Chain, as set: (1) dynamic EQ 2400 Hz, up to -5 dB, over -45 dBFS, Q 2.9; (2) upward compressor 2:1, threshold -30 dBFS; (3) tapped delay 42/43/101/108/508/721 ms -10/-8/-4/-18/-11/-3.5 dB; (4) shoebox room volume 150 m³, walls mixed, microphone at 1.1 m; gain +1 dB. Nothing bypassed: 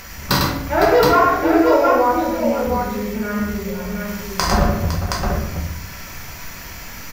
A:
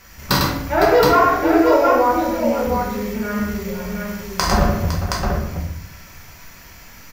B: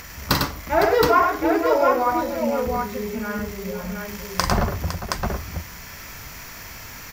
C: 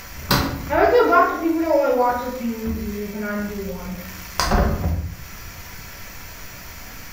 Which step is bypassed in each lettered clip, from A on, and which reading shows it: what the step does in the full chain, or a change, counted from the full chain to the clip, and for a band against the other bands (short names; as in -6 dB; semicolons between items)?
2, momentary loudness spread change -6 LU; 4, echo-to-direct 6.0 dB to 0.5 dB; 3, echo-to-direct 6.0 dB to 1.0 dB